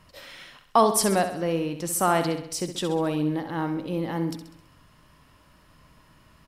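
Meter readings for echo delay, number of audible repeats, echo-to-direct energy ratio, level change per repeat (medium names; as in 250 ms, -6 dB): 66 ms, 5, -8.0 dB, -5.5 dB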